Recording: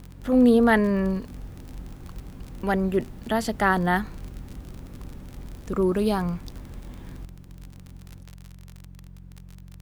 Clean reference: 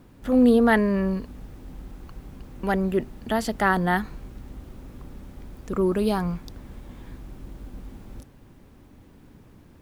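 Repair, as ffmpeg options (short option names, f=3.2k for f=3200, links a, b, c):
-af "adeclick=t=4,bandreject=f=45.1:t=h:w=4,bandreject=f=90.2:t=h:w=4,bandreject=f=135.3:t=h:w=4,bandreject=f=180.4:t=h:w=4,asetnsamples=n=441:p=0,asendcmd='7.25 volume volume 9.5dB',volume=0dB"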